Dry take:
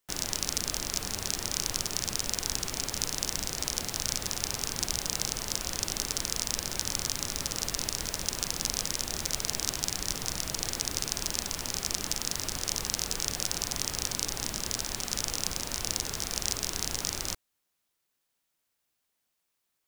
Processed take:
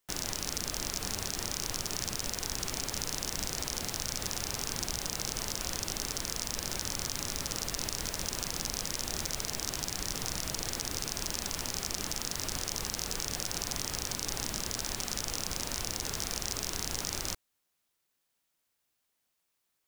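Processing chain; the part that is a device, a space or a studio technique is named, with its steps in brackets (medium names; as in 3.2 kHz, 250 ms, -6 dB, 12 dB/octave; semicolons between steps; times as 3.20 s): soft clipper into limiter (saturation -11.5 dBFS, distortion -15 dB; peak limiter -15 dBFS, peak gain reduction 3 dB)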